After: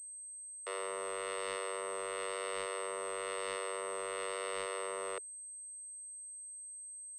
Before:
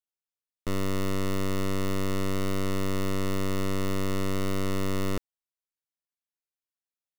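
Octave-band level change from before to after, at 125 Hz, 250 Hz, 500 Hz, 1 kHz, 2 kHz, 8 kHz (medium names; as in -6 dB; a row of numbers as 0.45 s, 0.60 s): under -35 dB, -24.0 dB, -5.5 dB, -3.5 dB, -4.0 dB, +3.5 dB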